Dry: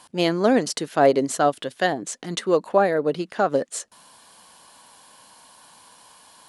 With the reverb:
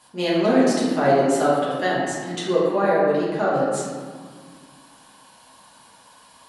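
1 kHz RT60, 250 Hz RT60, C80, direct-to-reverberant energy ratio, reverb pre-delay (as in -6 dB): 1.8 s, 2.6 s, 1.0 dB, -9.0 dB, 5 ms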